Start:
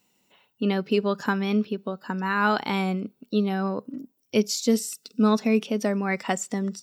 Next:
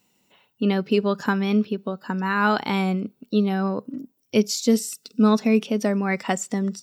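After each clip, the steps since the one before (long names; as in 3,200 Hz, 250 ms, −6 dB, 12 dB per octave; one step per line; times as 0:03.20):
low-shelf EQ 180 Hz +4 dB
level +1.5 dB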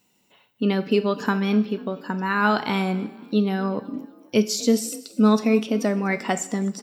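echo with shifted repeats 246 ms, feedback 38%, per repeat +39 Hz, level −21 dB
coupled-rooms reverb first 0.53 s, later 1.6 s, DRR 11 dB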